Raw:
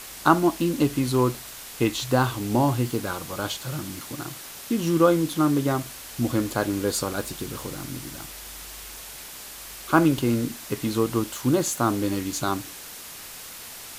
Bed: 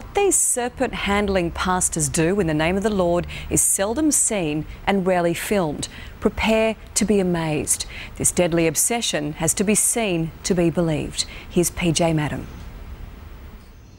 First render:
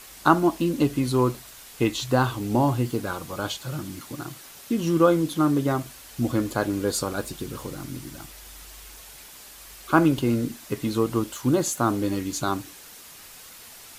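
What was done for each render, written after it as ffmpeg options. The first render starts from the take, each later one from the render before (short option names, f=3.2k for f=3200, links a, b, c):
-af "afftdn=nr=6:nf=-40"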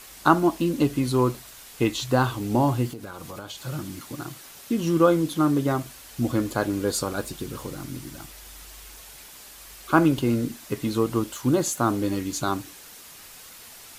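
-filter_complex "[0:a]asettb=1/sr,asplit=3[a][b][c];[a]atrim=end=2.894[d];[b]atrim=start=2.89:end=3.58,asetpts=PTS-STARTPTS,afade=t=in:d=0.004:c=qsin,afade=t=out:st=0.686:d=0.004:c=qsin,acompressor=threshold=-33dB:ratio=6:attack=3.2:release=140:knee=1:detection=peak[e];[c]atrim=start=3.576[f];[d][e]acrossfade=d=0.004:c1=hsin:c2=qsin[g];[g][f]acrossfade=d=0.004:c1=qsin:c2=hsin"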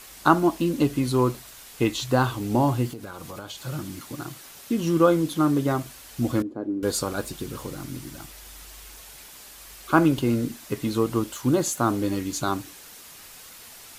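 -filter_complex "[0:a]asettb=1/sr,asplit=3[a][b][c];[a]atrim=end=6.424[d];[b]atrim=start=6.42:end=6.83,asetpts=PTS-STARTPTS,afade=t=in:d=0.004:c=qsin,afade=t=out:st=0.406:d=0.004:c=qsin,bandpass=f=300:t=q:w=2.3[e];[c]atrim=start=6.826[f];[d][e]acrossfade=d=0.004:c1=hsin:c2=qsin[g];[g][f]acrossfade=d=0.004:c1=qsin:c2=hsin"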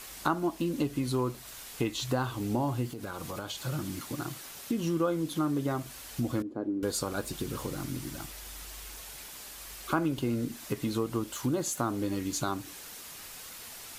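-af "acompressor=threshold=-30dB:ratio=2.5"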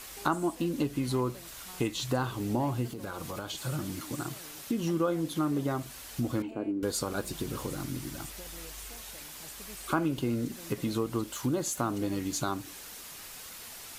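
-filter_complex "[1:a]volume=-31.5dB[a];[0:a][a]amix=inputs=2:normalize=0"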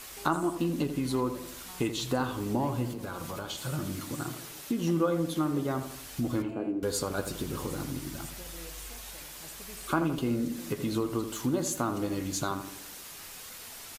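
-filter_complex "[0:a]asplit=2[a][b];[b]adelay=12,volume=-13dB[c];[a][c]amix=inputs=2:normalize=0,asplit=2[d][e];[e]adelay=83,lowpass=f=2k:p=1,volume=-9dB,asplit=2[f][g];[g]adelay=83,lowpass=f=2k:p=1,volume=0.52,asplit=2[h][i];[i]adelay=83,lowpass=f=2k:p=1,volume=0.52,asplit=2[j][k];[k]adelay=83,lowpass=f=2k:p=1,volume=0.52,asplit=2[l][m];[m]adelay=83,lowpass=f=2k:p=1,volume=0.52,asplit=2[n][o];[o]adelay=83,lowpass=f=2k:p=1,volume=0.52[p];[d][f][h][j][l][n][p]amix=inputs=7:normalize=0"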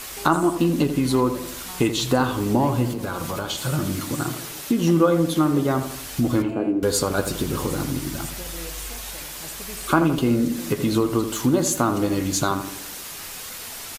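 -af "volume=9.5dB,alimiter=limit=-3dB:level=0:latency=1"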